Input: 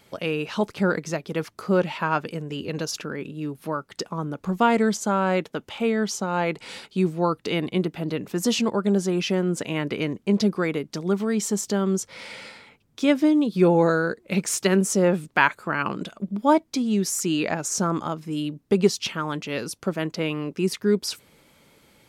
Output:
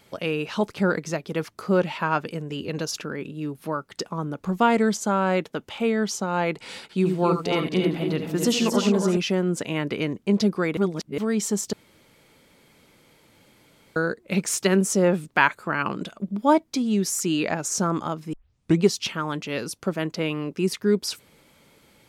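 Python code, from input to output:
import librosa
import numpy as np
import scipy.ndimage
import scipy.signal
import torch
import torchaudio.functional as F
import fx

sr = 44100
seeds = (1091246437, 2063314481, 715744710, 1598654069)

y = fx.echo_multitap(x, sr, ms=(72, 83, 89, 264, 277, 310), db=(-11.0, -10.5, -20.0, -9.0, -9.0, -10.0), at=(6.82, 9.17))
y = fx.edit(y, sr, fx.reverse_span(start_s=10.77, length_s=0.41),
    fx.room_tone_fill(start_s=11.73, length_s=2.23),
    fx.tape_start(start_s=18.33, length_s=0.49), tone=tone)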